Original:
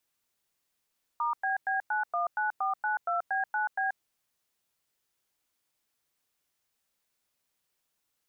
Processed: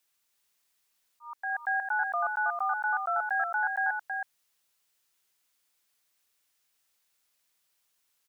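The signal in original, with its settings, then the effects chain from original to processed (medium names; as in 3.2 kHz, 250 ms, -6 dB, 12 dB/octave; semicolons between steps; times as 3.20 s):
DTMF "*BB919492B9B", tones 133 ms, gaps 101 ms, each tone -29 dBFS
tilt shelf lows -4.5 dB, about 870 Hz; slow attack 457 ms; delay 322 ms -5 dB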